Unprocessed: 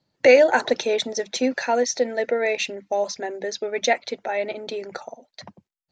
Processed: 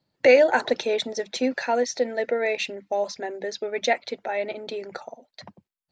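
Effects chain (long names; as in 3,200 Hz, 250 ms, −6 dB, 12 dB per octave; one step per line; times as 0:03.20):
parametric band 6,200 Hz −5 dB 0.39 octaves
level −2 dB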